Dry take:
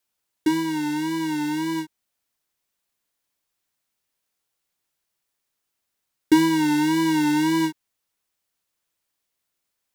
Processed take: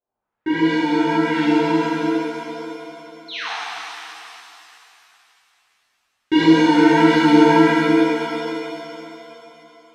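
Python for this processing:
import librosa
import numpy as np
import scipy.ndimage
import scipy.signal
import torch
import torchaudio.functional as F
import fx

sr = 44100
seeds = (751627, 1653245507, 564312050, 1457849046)

y = fx.filter_lfo_lowpass(x, sr, shape='saw_up', hz=1.4, low_hz=650.0, high_hz=3600.0, q=2.0)
y = fx.spec_paint(y, sr, seeds[0], shape='fall', start_s=3.28, length_s=0.23, low_hz=650.0, high_hz=4500.0, level_db=-31.0)
y = fx.rev_shimmer(y, sr, seeds[1], rt60_s=3.0, semitones=7, shimmer_db=-8, drr_db=-11.5)
y = y * 10.0 ** (-5.5 / 20.0)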